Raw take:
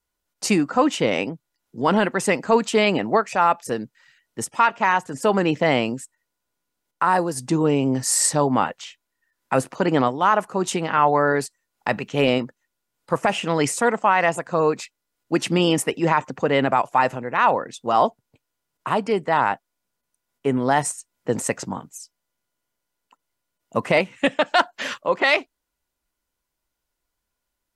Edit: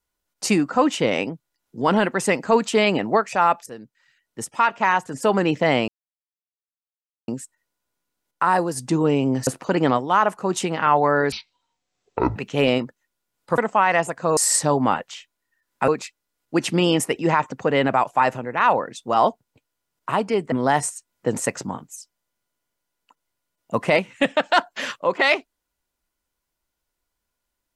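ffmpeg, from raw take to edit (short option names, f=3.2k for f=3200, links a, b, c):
-filter_complex "[0:a]asplit=10[a][b][c][d][e][f][g][h][i][j];[a]atrim=end=3.66,asetpts=PTS-STARTPTS,afade=t=out:st=3.656:d=0.004:c=hsin:silence=0.199526[k];[b]atrim=start=3.66:end=5.88,asetpts=PTS-STARTPTS,afade=t=in:d=1.17:silence=0.199526,afade=t=out:st=2.216:d=0.004:c=hsin,apad=pad_dur=1.4[l];[c]atrim=start=5.88:end=8.072,asetpts=PTS-STARTPTS,afade=t=in:d=0.004:c=hsin[m];[d]atrim=start=9.578:end=11.434[n];[e]atrim=start=11.43:end=11.96,asetpts=PTS-STARTPTS,asetrate=22491,aresample=44100,atrim=end_sample=45829,asetpts=PTS-STARTPTS[o];[f]atrim=start=11.956:end=13.182[p];[g]atrim=start=13.868:end=14.662[q];[h]atrim=start=8.068:end=9.582[r];[i]atrim=start=14.658:end=19.302[s];[j]atrim=start=20.538[t];[k][l][m]concat=n=3:v=0:a=1[u];[u][n]acrossfade=d=0.004:c1=hsin:c2=hsin[v];[v][o]acrossfade=d=0.004:c1=hsin:c2=hsin[w];[w][p]acrossfade=d=0.004:c1=hsin:c2=hsin[x];[x][q]acrossfade=d=0.004:c1=hsin:c2=hsin[y];[y][r]acrossfade=d=0.004:c1=hsin:c2=hsin[z];[z][s]acrossfade=d=0.004:c1=hsin:c2=hsin[aa];[aa][t]acrossfade=d=0.004:c1=hsin:c2=hsin"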